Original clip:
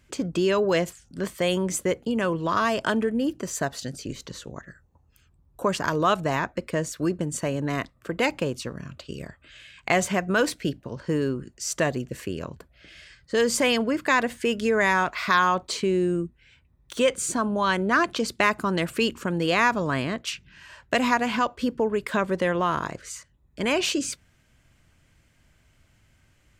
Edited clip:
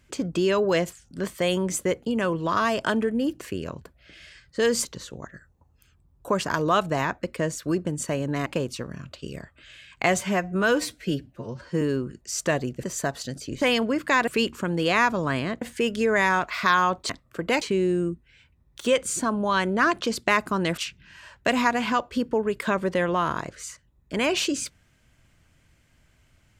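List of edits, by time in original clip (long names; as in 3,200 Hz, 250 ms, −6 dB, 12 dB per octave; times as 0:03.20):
0:03.41–0:04.19: swap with 0:12.16–0:13.60
0:07.80–0:08.32: move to 0:15.74
0:10.07–0:11.14: time-stretch 1.5×
0:18.90–0:20.24: move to 0:14.26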